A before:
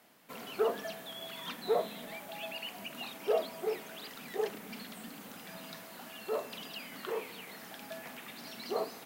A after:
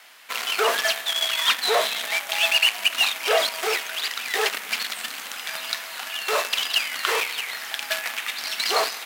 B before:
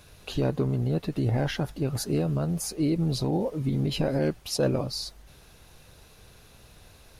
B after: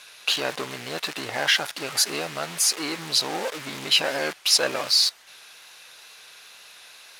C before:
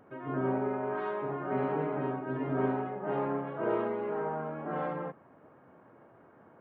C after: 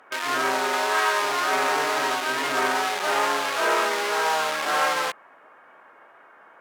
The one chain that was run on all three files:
wow and flutter 22 cents; in parallel at -10 dB: companded quantiser 2-bit; on the sum: band-pass filter 1.9 kHz, Q 0.65; tilt EQ +3.5 dB/octave; normalise loudness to -23 LUFS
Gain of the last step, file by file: +14.5 dB, +8.0 dB, +12.5 dB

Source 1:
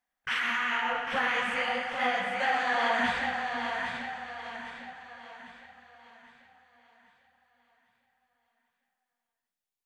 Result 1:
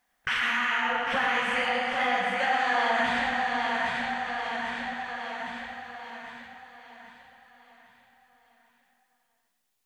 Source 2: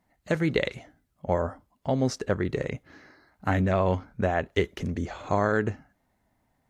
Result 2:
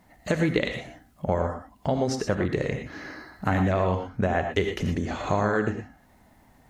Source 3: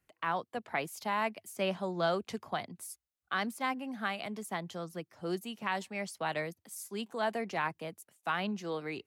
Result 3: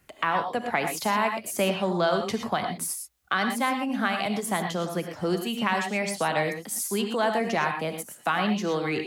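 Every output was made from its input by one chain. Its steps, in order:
compression 2:1, threshold -45 dBFS; gated-style reverb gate 140 ms rising, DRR 5 dB; normalise loudness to -27 LUFS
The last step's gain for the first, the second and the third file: +11.5 dB, +13.0 dB, +16.0 dB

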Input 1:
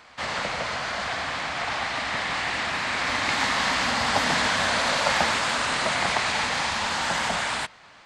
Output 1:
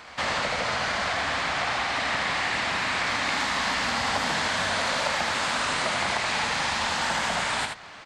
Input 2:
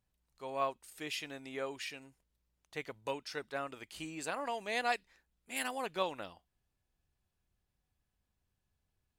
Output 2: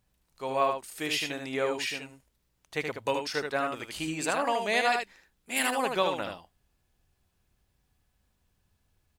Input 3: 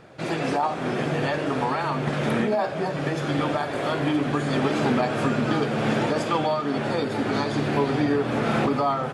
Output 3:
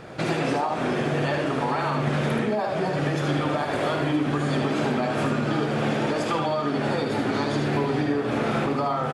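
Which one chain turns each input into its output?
compression 6:1, threshold -30 dBFS; delay 76 ms -5 dB; peak normalisation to -12 dBFS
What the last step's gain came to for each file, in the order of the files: +5.0 dB, +9.0 dB, +7.0 dB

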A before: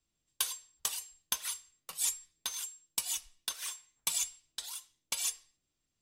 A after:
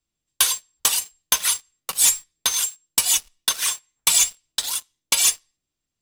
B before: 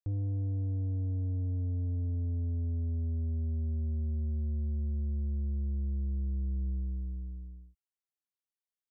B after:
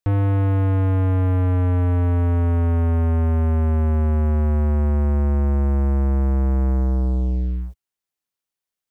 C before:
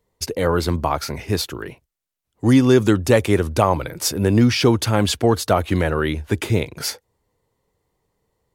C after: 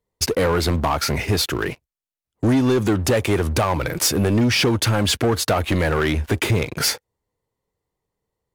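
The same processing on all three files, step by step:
dynamic bell 2 kHz, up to +3 dB, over -41 dBFS, Q 1.1; compression 3:1, threshold -21 dBFS; waveshaping leveller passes 3; normalise loudness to -20 LUFS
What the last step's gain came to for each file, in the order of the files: +6.0 dB, +13.0 dB, -3.5 dB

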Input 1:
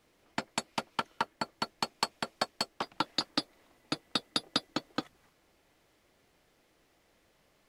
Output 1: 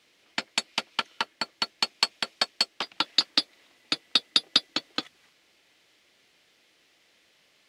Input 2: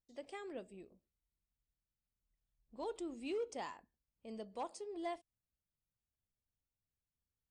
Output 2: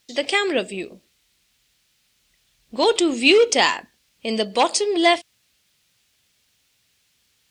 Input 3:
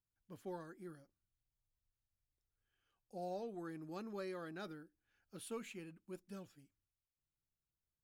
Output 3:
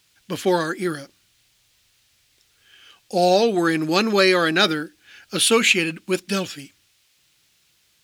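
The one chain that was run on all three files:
frequency weighting D; peak normalisation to -2 dBFS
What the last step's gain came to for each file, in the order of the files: -0.5 dB, +25.0 dB, +27.5 dB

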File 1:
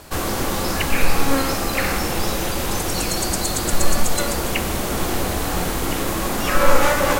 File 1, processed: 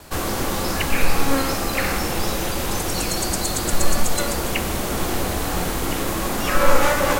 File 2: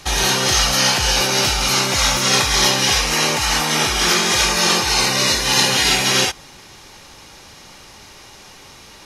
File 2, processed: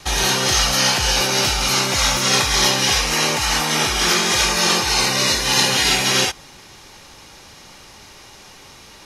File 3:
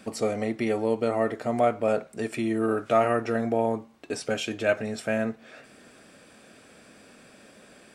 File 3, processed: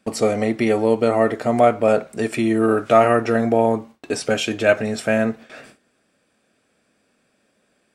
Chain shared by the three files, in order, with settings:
gate with hold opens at -38 dBFS; peak normalisation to -2 dBFS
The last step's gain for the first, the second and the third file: -1.0 dB, -1.0 dB, +8.0 dB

